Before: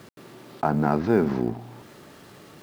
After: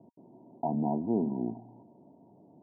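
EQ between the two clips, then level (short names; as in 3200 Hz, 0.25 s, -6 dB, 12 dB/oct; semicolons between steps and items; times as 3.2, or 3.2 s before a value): HPF 100 Hz; rippled Chebyshev low-pass 980 Hz, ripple 9 dB; -4.0 dB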